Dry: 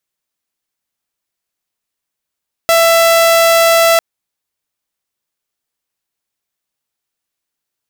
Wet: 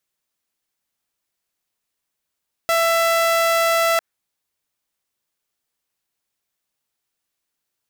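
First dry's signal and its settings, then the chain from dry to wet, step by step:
tone saw 666 Hz −4.5 dBFS 1.30 s
brickwall limiter −14.5 dBFS
dynamic equaliser 1,600 Hz, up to +6 dB, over −38 dBFS, Q 1.6

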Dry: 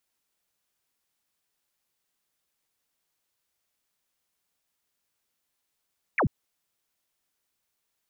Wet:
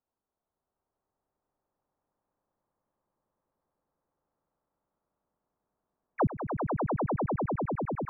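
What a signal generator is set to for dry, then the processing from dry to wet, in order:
single falling chirp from 2,600 Hz, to 90 Hz, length 0.09 s sine, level −20 dB
low-pass filter 1,100 Hz 24 dB per octave
echo that builds up and dies away 99 ms, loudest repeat 8, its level −5 dB

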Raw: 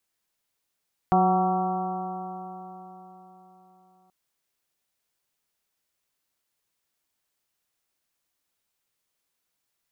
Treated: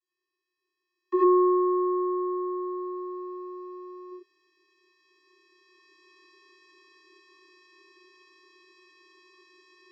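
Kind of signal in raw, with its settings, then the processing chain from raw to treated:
stiff-string partials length 2.98 s, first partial 183 Hz, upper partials −4/−13.5/4/−6.5/−6/−13 dB, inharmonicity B 0.0021, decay 4.07 s, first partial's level −22 dB
camcorder AGC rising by 6.5 dB per second
channel vocoder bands 32, square 363 Hz
reverb whose tail is shaped and stops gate 120 ms rising, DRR −8 dB

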